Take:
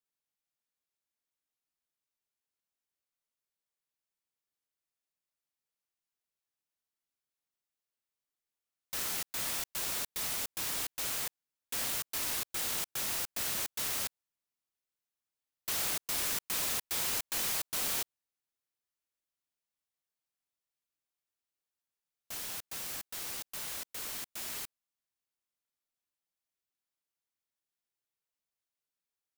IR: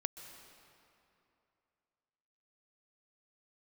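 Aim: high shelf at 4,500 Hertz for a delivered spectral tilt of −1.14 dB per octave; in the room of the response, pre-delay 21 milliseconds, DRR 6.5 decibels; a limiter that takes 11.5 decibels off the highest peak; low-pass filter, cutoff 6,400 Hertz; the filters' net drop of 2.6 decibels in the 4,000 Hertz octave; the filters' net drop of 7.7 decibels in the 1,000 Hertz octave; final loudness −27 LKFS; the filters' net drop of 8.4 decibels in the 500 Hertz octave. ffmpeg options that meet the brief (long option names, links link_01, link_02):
-filter_complex "[0:a]lowpass=6400,equalizer=frequency=500:width_type=o:gain=-8.5,equalizer=frequency=1000:width_type=o:gain=-8,equalizer=frequency=4000:width_type=o:gain=-4.5,highshelf=frequency=4500:gain=4.5,alimiter=level_in=13dB:limit=-24dB:level=0:latency=1,volume=-13dB,asplit=2[link_01][link_02];[1:a]atrim=start_sample=2205,adelay=21[link_03];[link_02][link_03]afir=irnorm=-1:irlink=0,volume=-6dB[link_04];[link_01][link_04]amix=inputs=2:normalize=0,volume=17.5dB"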